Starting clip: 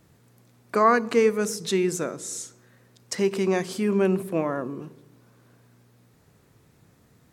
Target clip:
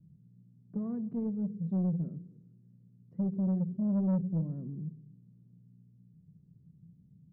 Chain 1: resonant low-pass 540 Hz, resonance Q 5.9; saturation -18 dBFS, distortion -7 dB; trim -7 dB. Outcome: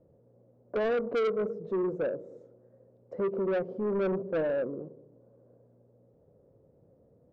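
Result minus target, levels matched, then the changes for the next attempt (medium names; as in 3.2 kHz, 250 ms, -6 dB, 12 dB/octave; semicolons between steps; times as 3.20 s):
500 Hz band +15.0 dB
change: resonant low-pass 170 Hz, resonance Q 5.9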